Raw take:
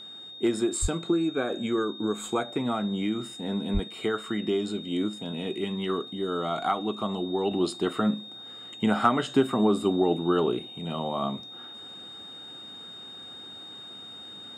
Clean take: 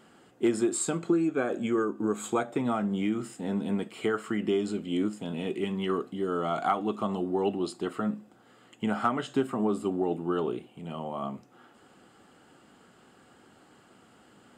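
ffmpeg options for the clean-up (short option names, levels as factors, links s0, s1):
-filter_complex "[0:a]bandreject=f=3700:w=30,asplit=3[s0][s1][s2];[s0]afade=t=out:st=0.81:d=0.02[s3];[s1]highpass=f=140:w=0.5412,highpass=f=140:w=1.3066,afade=t=in:st=0.81:d=0.02,afade=t=out:st=0.93:d=0.02[s4];[s2]afade=t=in:st=0.93:d=0.02[s5];[s3][s4][s5]amix=inputs=3:normalize=0,asplit=3[s6][s7][s8];[s6]afade=t=out:st=3.73:d=0.02[s9];[s7]highpass=f=140:w=0.5412,highpass=f=140:w=1.3066,afade=t=in:st=3.73:d=0.02,afade=t=out:st=3.85:d=0.02[s10];[s8]afade=t=in:st=3.85:d=0.02[s11];[s9][s10][s11]amix=inputs=3:normalize=0,asetnsamples=n=441:p=0,asendcmd='7.51 volume volume -5dB',volume=1"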